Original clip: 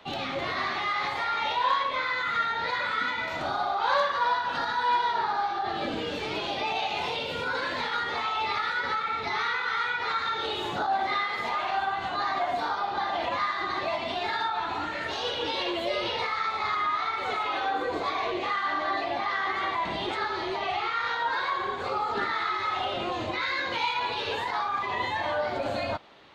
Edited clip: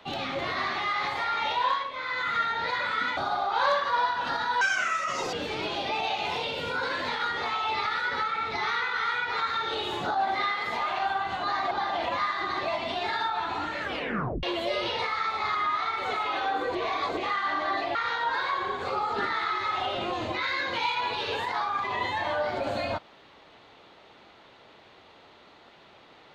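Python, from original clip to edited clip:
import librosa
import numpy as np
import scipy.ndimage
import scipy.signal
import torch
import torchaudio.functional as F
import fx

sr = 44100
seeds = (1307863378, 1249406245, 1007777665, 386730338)

y = fx.edit(x, sr, fx.fade_down_up(start_s=1.63, length_s=0.6, db=-8.0, fade_s=0.29),
    fx.cut(start_s=3.17, length_s=0.28),
    fx.speed_span(start_s=4.89, length_s=1.16, speed=1.61),
    fx.cut(start_s=12.43, length_s=0.48),
    fx.tape_stop(start_s=15.0, length_s=0.63),
    fx.reverse_span(start_s=17.95, length_s=0.42),
    fx.cut(start_s=19.15, length_s=1.79), tone=tone)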